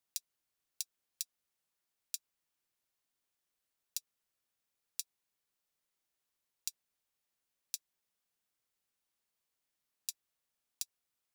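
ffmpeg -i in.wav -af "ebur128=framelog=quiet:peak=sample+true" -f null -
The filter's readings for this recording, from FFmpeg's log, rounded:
Integrated loudness:
  I:         -44.5 LUFS
  Threshold: -54.6 LUFS
Loudness range:
  LRA:         1.8 LU
  Threshold: -69.7 LUFS
  LRA low:   -50.1 LUFS
  LRA high:  -48.4 LUFS
Sample peak:
  Peak:      -13.1 dBFS
True peak:
  Peak:      -11.9 dBFS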